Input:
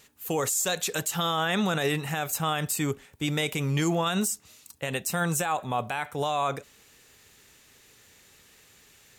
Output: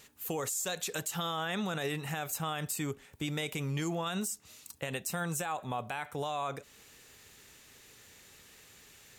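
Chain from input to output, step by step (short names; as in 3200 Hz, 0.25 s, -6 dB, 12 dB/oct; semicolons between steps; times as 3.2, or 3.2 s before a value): compressor 2:1, threshold -38 dBFS, peak gain reduction 9 dB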